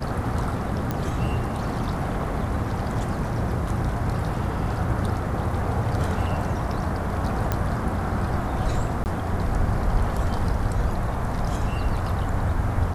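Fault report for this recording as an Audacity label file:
0.910000	0.910000	pop -13 dBFS
7.520000	7.520000	pop -10 dBFS
9.040000	9.060000	dropout 19 ms

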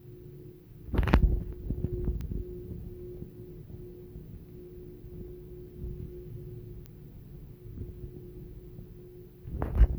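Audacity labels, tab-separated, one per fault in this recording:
2.210000	2.210000	pop -26 dBFS
6.860000	6.860000	pop -28 dBFS

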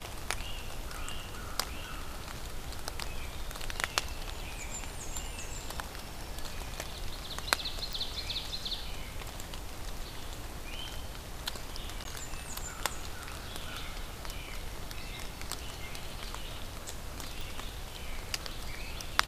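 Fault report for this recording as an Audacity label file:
7.930000	7.930000	pop
12.040000	12.050000	dropout 12 ms
17.410000	17.410000	pop

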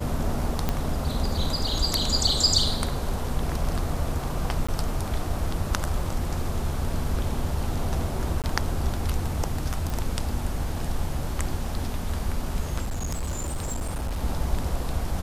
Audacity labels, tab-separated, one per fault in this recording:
0.690000	0.690000	pop -10 dBFS
4.670000	4.680000	dropout 15 ms
8.420000	8.440000	dropout 18 ms
9.900000	9.900000	pop
12.830000	14.210000	clipped -25 dBFS

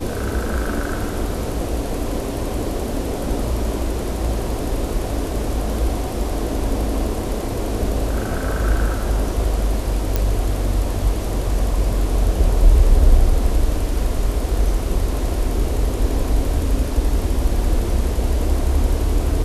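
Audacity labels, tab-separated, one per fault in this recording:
10.160000	10.160000	pop -5 dBFS

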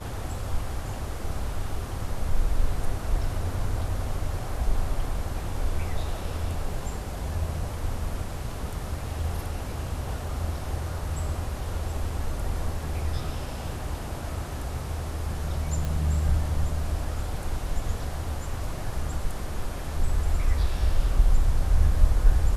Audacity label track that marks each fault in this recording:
15.850000	15.850000	pop

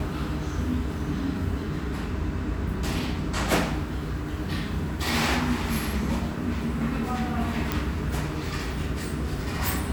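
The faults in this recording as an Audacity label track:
7.720000	7.720000	pop

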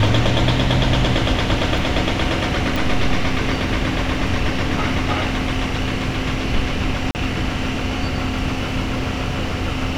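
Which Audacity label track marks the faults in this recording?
2.760000	2.760000	pop
7.110000	7.150000	dropout 39 ms

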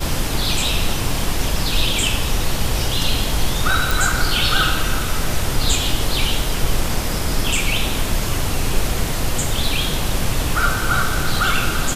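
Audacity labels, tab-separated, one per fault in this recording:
3.910000	3.910000	pop

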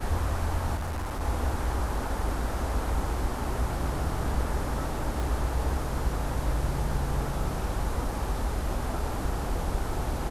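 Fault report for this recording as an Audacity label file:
0.750000	1.220000	clipped -28.5 dBFS
5.200000	5.200000	pop

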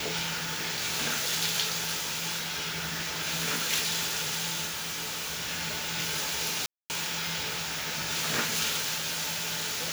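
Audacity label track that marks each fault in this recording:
4.660000	5.430000	clipped -31 dBFS
6.660000	6.900000	dropout 239 ms

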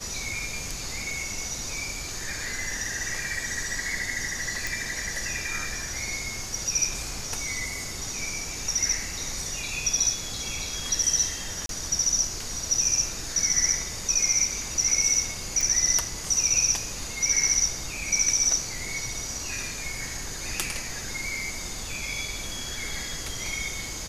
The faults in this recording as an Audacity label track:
4.670000	4.670000	pop
11.660000	11.690000	dropout 32 ms
15.610000	15.610000	pop

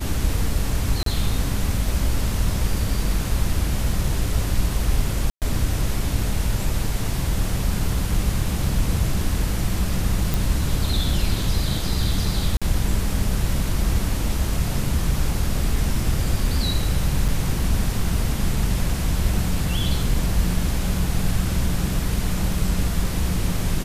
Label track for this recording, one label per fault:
1.030000	1.060000	dropout 33 ms
5.300000	5.420000	dropout 118 ms
10.340000	10.340000	pop
12.570000	12.620000	dropout 46 ms
17.280000	17.290000	dropout 6 ms

